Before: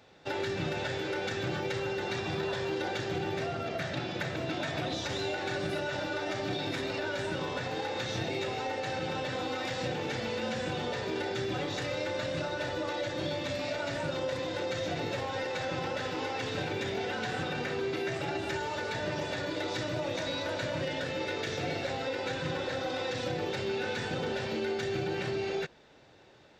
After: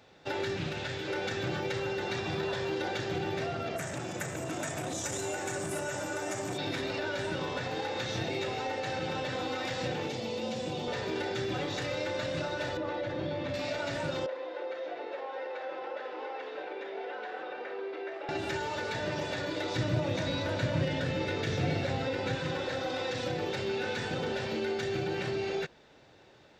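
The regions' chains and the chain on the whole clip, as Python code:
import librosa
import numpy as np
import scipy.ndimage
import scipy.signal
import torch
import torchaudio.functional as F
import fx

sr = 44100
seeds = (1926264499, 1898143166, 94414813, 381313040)

y = fx.chain(x, sr, fx.peak_eq(hz=630.0, db=-5.0, octaves=2.2),
    fx.doppler_dist(depth_ms=0.25), at=(0.57, 1.08))
y = fx.chain(y, sr, fx.highpass(hz=66.0, slope=24),
    fx.high_shelf_res(hz=5800.0, db=12.5, q=3.0),
    fx.transformer_sat(knee_hz=820.0), at=(3.76, 6.58))
y = fx.chain(y, sr, fx.highpass(hz=110.0, slope=12),
    fx.peak_eq(hz=1600.0, db=-13.0, octaves=0.82), at=(10.08, 10.88))
y = fx.chain(y, sr, fx.spacing_loss(db_at_10k=25),
    fx.env_flatten(amount_pct=50), at=(12.77, 13.54))
y = fx.chain(y, sr, fx.highpass(hz=400.0, slope=24),
    fx.spacing_loss(db_at_10k=37), at=(14.26, 18.29))
y = fx.chain(y, sr, fx.highpass(hz=52.0, slope=12),
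    fx.bass_treble(bass_db=10, treble_db=-2), at=(19.75, 22.35))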